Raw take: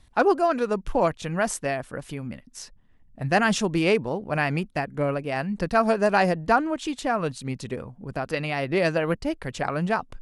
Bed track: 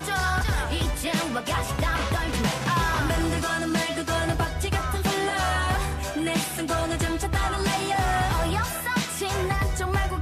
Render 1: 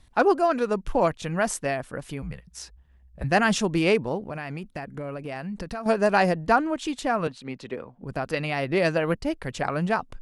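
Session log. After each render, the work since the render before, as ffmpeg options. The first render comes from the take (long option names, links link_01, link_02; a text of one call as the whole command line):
ffmpeg -i in.wav -filter_complex "[0:a]asettb=1/sr,asplit=3[link_01][link_02][link_03];[link_01]atrim=end=2.224[link_04];[link_02]atrim=start=2.22:end=3.24,asetpts=PTS-STARTPTS,afade=type=in:duration=0.004:curve=qsin,afade=type=out:start_time=1.016:duration=0.004:curve=qsin,afreqshift=-73[link_05];[link_03]atrim=start=3.236[link_06];[link_04][link_05]acrossfade=duration=0.004:curve1=hsin:curve2=qsin[link_07];[link_07][link_06]acrossfade=duration=0.004:curve1=qsin:curve2=hsin,asettb=1/sr,asplit=3[link_08][link_09][link_10];[link_08]atrim=end=4.264[link_11];[link_09]atrim=start=4.26:end=5.86,asetpts=PTS-STARTPTS,afade=type=in:duration=0.004:curve=qsin,afade=type=out:start_time=1.596:duration=0.004:curve=qsin,acompressor=threshold=-29dB:ratio=10:attack=3.2:release=140:knee=1:detection=peak[link_12];[link_10]atrim=start=5.856[link_13];[link_11][link_12]acrossfade=duration=0.004:curve1=hsin:curve2=qsin[link_14];[link_14][link_13]acrossfade=duration=0.004:curve1=qsin:curve2=hsin,asettb=1/sr,asplit=3[link_15][link_16][link_17];[link_15]atrim=end=7.274[link_18];[link_16]atrim=start=7.27:end=8.03,asetpts=PTS-STARTPTS,afade=type=in:duration=0.004:curve=qsin,afade=type=out:start_time=0.756:duration=0.004:curve=qsin,acrossover=split=240 4500:gain=0.251 1 0.178[link_19][link_20][link_21];[link_19][link_20][link_21]amix=inputs=3:normalize=0[link_22];[link_17]atrim=start=8.026[link_23];[link_18][link_22]acrossfade=duration=0.004:curve1=hsin:curve2=qsin[link_24];[link_24][link_23]acrossfade=duration=0.004:curve1=qsin:curve2=hsin" out.wav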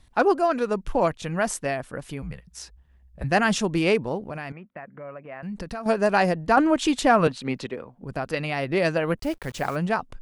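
ffmpeg -i in.wav -filter_complex "[0:a]asettb=1/sr,asplit=3[link_01][link_02][link_03];[link_01]atrim=end=4.524[link_04];[link_02]atrim=start=4.52:end=5.43,asetpts=PTS-STARTPTS,afade=type=in:duration=0.004:curve=qsin,afade=type=out:start_time=0.906:duration=0.004:curve=qsin,highpass=240,equalizer=frequency=290:width_type=q:width=4:gain=-9,equalizer=frequency=420:width_type=q:width=4:gain=-8,equalizer=frequency=820:width_type=q:width=4:gain=-6,equalizer=frequency=1500:width_type=q:width=4:gain=-3,lowpass=frequency=2100:width=0.5412,lowpass=frequency=2100:width=1.3066[link_05];[link_03]atrim=start=5.426[link_06];[link_04][link_05]acrossfade=duration=0.004:curve1=hsin:curve2=qsin[link_07];[link_07][link_06]acrossfade=duration=0.004:curve1=qsin:curve2=hsin,asettb=1/sr,asplit=3[link_08][link_09][link_10];[link_08]atrim=end=6.574[link_11];[link_09]atrim=start=6.57:end=7.67,asetpts=PTS-STARTPTS,afade=type=in:duration=0.004:curve=qsin,afade=type=out:start_time=1.096:duration=0.004:curve=qsin,acontrast=88[link_12];[link_10]atrim=start=7.666[link_13];[link_11][link_12]acrossfade=duration=0.004:curve1=hsin:curve2=qsin[link_14];[link_14][link_13]acrossfade=duration=0.004:curve1=qsin:curve2=hsin,asplit=3[link_15][link_16][link_17];[link_15]afade=type=out:start_time=9.17:duration=0.02[link_18];[link_16]acrusher=bits=8:dc=4:mix=0:aa=0.000001,afade=type=in:start_time=9.17:duration=0.02,afade=type=out:start_time=9.75:duration=0.02[link_19];[link_17]afade=type=in:start_time=9.75:duration=0.02[link_20];[link_18][link_19][link_20]amix=inputs=3:normalize=0" out.wav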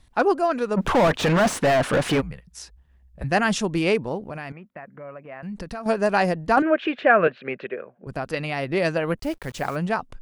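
ffmpeg -i in.wav -filter_complex "[0:a]asplit=3[link_01][link_02][link_03];[link_01]afade=type=out:start_time=0.76:duration=0.02[link_04];[link_02]asplit=2[link_05][link_06];[link_06]highpass=frequency=720:poles=1,volume=38dB,asoftclip=type=tanh:threshold=-10.5dB[link_07];[link_05][link_07]amix=inputs=2:normalize=0,lowpass=frequency=1400:poles=1,volume=-6dB,afade=type=in:start_time=0.76:duration=0.02,afade=type=out:start_time=2.2:duration=0.02[link_08];[link_03]afade=type=in:start_time=2.2:duration=0.02[link_09];[link_04][link_08][link_09]amix=inputs=3:normalize=0,asettb=1/sr,asplit=3[link_10][link_11][link_12];[link_10]atrim=end=6.624[link_13];[link_11]atrim=start=6.62:end=8.07,asetpts=PTS-STARTPTS,afade=type=in:duration=0.004:curve=qsin,afade=type=out:start_time=1.446:duration=0.004:curve=qsin,highpass=220,equalizer=frequency=270:width_type=q:width=4:gain=-8,equalizer=frequency=390:width_type=q:width=4:gain=4,equalizer=frequency=590:width_type=q:width=4:gain=6,equalizer=frequency=920:width_type=q:width=4:gain=-9,equalizer=frequency=1600:width_type=q:width=4:gain=9,equalizer=frequency=2500:width_type=q:width=4:gain=5,lowpass=frequency=2700:width=0.5412,lowpass=frequency=2700:width=1.3066[link_14];[link_12]atrim=start=8.066[link_15];[link_13][link_14]acrossfade=duration=0.004:curve1=hsin:curve2=qsin[link_16];[link_16][link_15]acrossfade=duration=0.004:curve1=qsin:curve2=hsin" out.wav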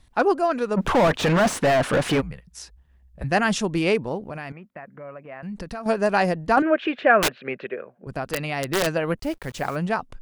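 ffmpeg -i in.wav -filter_complex "[0:a]asplit=3[link_01][link_02][link_03];[link_01]afade=type=out:start_time=7.18:duration=0.02[link_04];[link_02]aeval=exprs='(mod(5.96*val(0)+1,2)-1)/5.96':channel_layout=same,afade=type=in:start_time=7.18:duration=0.02,afade=type=out:start_time=8.85:duration=0.02[link_05];[link_03]afade=type=in:start_time=8.85:duration=0.02[link_06];[link_04][link_05][link_06]amix=inputs=3:normalize=0" out.wav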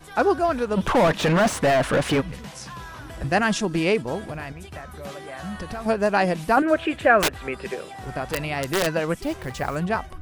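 ffmpeg -i in.wav -i bed.wav -filter_complex "[1:a]volume=-14.5dB[link_01];[0:a][link_01]amix=inputs=2:normalize=0" out.wav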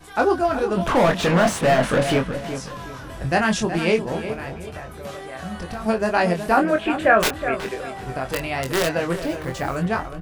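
ffmpeg -i in.wav -filter_complex "[0:a]asplit=2[link_01][link_02];[link_02]adelay=23,volume=-5dB[link_03];[link_01][link_03]amix=inputs=2:normalize=0,asplit=2[link_04][link_05];[link_05]adelay=370,lowpass=frequency=2400:poles=1,volume=-9.5dB,asplit=2[link_06][link_07];[link_07]adelay=370,lowpass=frequency=2400:poles=1,volume=0.35,asplit=2[link_08][link_09];[link_09]adelay=370,lowpass=frequency=2400:poles=1,volume=0.35,asplit=2[link_10][link_11];[link_11]adelay=370,lowpass=frequency=2400:poles=1,volume=0.35[link_12];[link_06][link_08][link_10][link_12]amix=inputs=4:normalize=0[link_13];[link_04][link_13]amix=inputs=2:normalize=0" out.wav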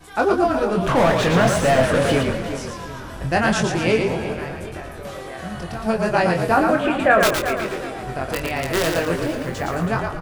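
ffmpeg -i in.wav -filter_complex "[0:a]asplit=6[link_01][link_02][link_03][link_04][link_05][link_06];[link_02]adelay=114,afreqshift=-42,volume=-4.5dB[link_07];[link_03]adelay=228,afreqshift=-84,volume=-12.7dB[link_08];[link_04]adelay=342,afreqshift=-126,volume=-20.9dB[link_09];[link_05]adelay=456,afreqshift=-168,volume=-29dB[link_10];[link_06]adelay=570,afreqshift=-210,volume=-37.2dB[link_11];[link_01][link_07][link_08][link_09][link_10][link_11]amix=inputs=6:normalize=0" out.wav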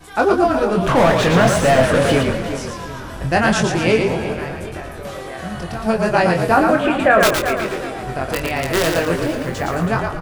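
ffmpeg -i in.wav -af "volume=3dB,alimiter=limit=-2dB:level=0:latency=1" out.wav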